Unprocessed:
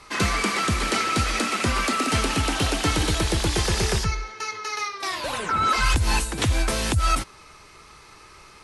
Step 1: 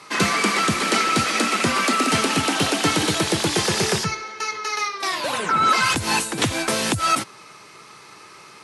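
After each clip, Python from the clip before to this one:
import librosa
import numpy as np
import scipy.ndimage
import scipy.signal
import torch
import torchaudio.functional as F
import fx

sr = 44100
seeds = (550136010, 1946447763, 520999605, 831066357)

y = scipy.signal.sosfilt(scipy.signal.butter(4, 130.0, 'highpass', fs=sr, output='sos'), x)
y = y * librosa.db_to_amplitude(4.0)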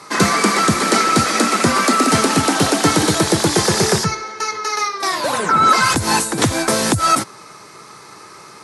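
y = fx.peak_eq(x, sr, hz=2800.0, db=-9.0, octaves=0.83)
y = y * librosa.db_to_amplitude(6.5)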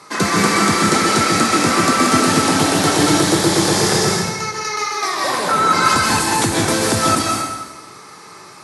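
y = fx.rev_plate(x, sr, seeds[0], rt60_s=1.2, hf_ratio=0.95, predelay_ms=120, drr_db=-2.0)
y = y * librosa.db_to_amplitude(-3.5)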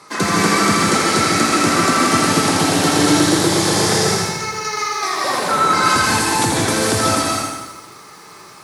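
y = fx.echo_crushed(x, sr, ms=82, feedback_pct=35, bits=7, wet_db=-4.5)
y = y * librosa.db_to_amplitude(-1.5)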